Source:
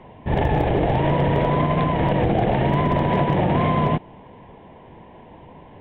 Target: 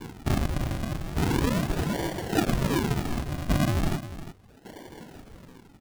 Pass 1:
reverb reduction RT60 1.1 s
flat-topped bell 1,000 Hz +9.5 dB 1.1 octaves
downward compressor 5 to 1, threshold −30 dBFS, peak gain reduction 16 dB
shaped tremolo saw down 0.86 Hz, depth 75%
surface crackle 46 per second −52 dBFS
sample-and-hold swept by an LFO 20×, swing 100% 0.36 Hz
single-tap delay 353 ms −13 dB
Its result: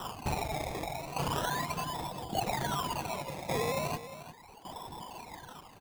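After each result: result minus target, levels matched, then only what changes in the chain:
downward compressor: peak gain reduction +8.5 dB; sample-and-hold swept by an LFO: distortion −11 dB
change: downward compressor 5 to 1, threshold −19.5 dBFS, peak gain reduction 8 dB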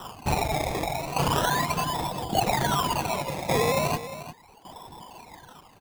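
sample-and-hold swept by an LFO: distortion −11 dB
change: sample-and-hold swept by an LFO 67×, swing 100% 0.36 Hz

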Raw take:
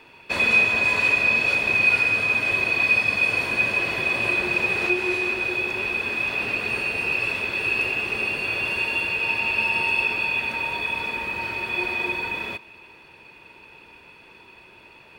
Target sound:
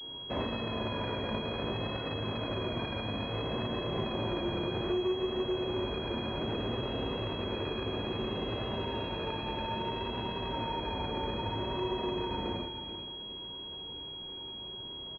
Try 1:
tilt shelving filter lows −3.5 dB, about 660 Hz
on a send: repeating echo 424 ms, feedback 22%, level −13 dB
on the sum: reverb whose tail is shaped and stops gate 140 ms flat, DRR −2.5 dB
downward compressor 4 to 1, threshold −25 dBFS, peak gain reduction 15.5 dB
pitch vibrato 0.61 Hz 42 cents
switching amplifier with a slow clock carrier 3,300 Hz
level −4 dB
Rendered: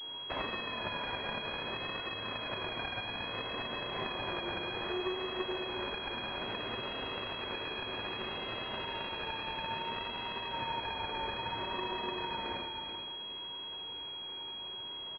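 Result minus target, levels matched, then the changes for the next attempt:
500 Hz band −4.0 dB
change: tilt shelving filter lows +6.5 dB, about 660 Hz

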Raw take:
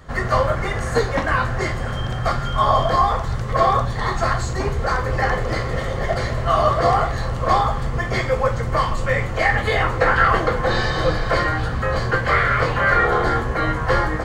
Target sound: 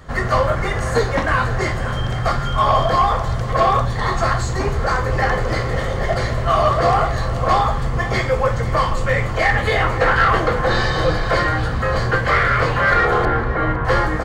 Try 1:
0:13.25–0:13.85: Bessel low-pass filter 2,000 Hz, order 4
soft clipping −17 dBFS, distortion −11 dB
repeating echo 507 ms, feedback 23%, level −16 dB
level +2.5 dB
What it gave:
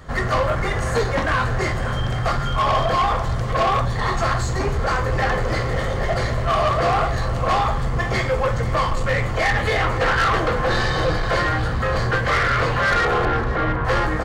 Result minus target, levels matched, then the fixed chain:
soft clipping: distortion +9 dB
0:13.25–0:13.85: Bessel low-pass filter 2,000 Hz, order 4
soft clipping −9 dBFS, distortion −21 dB
repeating echo 507 ms, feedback 23%, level −16 dB
level +2.5 dB

